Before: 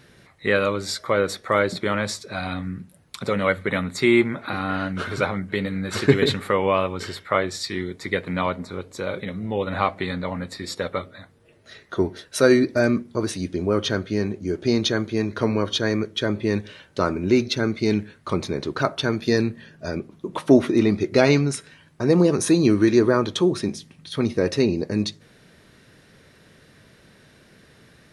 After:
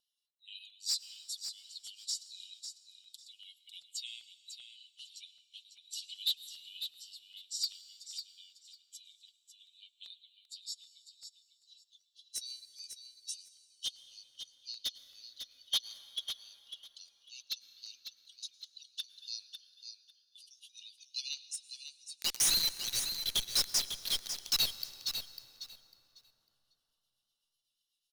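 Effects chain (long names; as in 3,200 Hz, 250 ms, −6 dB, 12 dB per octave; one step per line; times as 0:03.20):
spectral dynamics exaggerated over time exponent 1.5
Butterworth high-pass 2,900 Hz 96 dB per octave
0:22.15–0:24.91: fuzz pedal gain 53 dB, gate −48 dBFS
pitch vibrato 3.6 Hz 19 cents
gain into a clipping stage and back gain 25 dB
rotating-speaker cabinet horn 0.75 Hz, later 8 Hz, at 0:24.29
repeating echo 549 ms, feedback 18%, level −8.5 dB
convolution reverb RT60 4.0 s, pre-delay 92 ms, DRR 14.5 dB
regular buffer underruns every 0.39 s, samples 64, repeat, from 0:00.31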